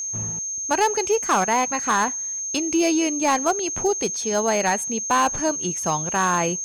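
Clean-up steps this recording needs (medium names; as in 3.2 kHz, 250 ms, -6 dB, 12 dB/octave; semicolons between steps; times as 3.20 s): clip repair -13 dBFS; band-stop 6.4 kHz, Q 30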